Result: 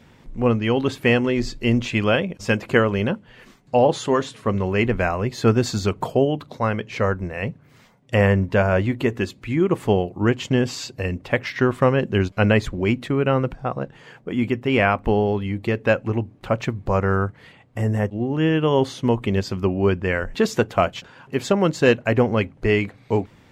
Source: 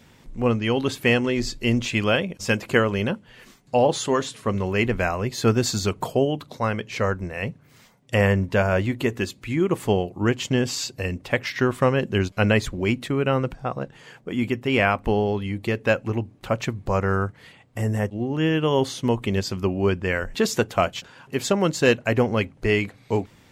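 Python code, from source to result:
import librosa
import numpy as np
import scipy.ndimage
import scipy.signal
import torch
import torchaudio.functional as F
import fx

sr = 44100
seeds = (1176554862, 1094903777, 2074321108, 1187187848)

y = fx.high_shelf(x, sr, hz=4200.0, db=-10.0)
y = y * librosa.db_to_amplitude(2.5)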